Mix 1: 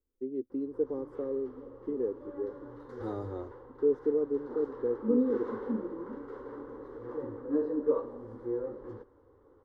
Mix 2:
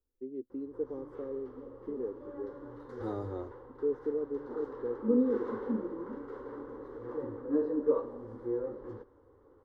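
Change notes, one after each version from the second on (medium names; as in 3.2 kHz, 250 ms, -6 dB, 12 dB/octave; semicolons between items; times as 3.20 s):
first voice -5.0 dB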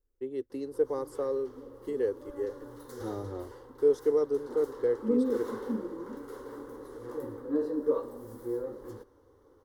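first voice: remove band-pass filter 240 Hz, Q 1.8; background: remove low-pass 2 kHz 12 dB/octave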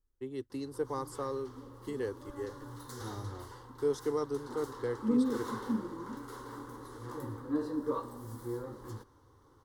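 second voice -5.5 dB; master: add graphic EQ 125/500/1000/4000/8000 Hz +8/-10/+6/+5/+5 dB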